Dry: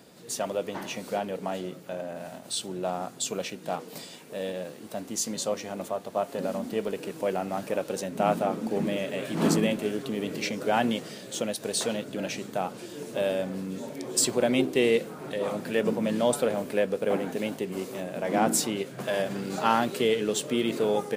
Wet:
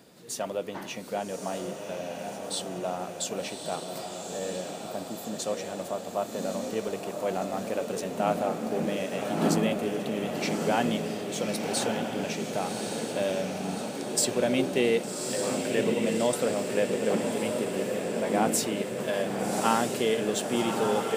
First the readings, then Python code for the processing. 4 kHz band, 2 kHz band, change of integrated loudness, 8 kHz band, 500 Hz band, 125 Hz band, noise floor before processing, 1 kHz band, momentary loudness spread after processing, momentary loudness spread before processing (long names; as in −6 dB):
−0.5 dB, −0.5 dB, −0.5 dB, −0.5 dB, −0.5 dB, 0.0 dB, −45 dBFS, −0.5 dB, 9 LU, 11 LU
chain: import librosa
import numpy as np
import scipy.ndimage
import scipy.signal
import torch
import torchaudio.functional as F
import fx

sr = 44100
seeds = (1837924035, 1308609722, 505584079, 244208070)

p1 = fx.spec_erase(x, sr, start_s=4.32, length_s=1.07, low_hz=1900.0, high_hz=11000.0)
p2 = p1 + fx.echo_diffused(p1, sr, ms=1162, feedback_pct=63, wet_db=-4.5, dry=0)
y = p2 * librosa.db_to_amplitude(-2.0)